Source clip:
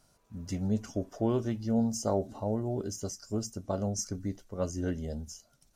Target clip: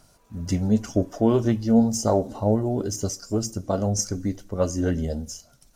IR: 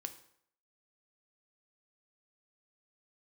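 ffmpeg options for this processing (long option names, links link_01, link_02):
-filter_complex "[0:a]asplit=2[link_01][link_02];[1:a]atrim=start_sample=2205,highshelf=frequency=12000:gain=7.5[link_03];[link_02][link_03]afir=irnorm=-1:irlink=0,volume=-5.5dB[link_04];[link_01][link_04]amix=inputs=2:normalize=0,aphaser=in_gain=1:out_gain=1:delay=4.3:decay=0.29:speed=2:type=sinusoidal,volume=5.5dB"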